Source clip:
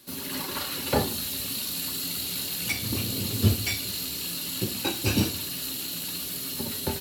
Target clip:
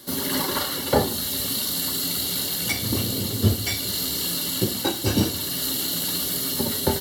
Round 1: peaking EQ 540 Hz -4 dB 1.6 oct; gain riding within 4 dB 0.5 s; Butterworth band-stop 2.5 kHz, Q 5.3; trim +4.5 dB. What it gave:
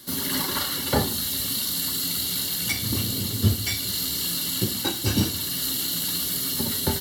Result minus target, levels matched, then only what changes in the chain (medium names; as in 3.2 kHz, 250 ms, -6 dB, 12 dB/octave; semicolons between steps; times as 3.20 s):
500 Hz band -5.0 dB
change: peaking EQ 540 Hz +3.5 dB 1.6 oct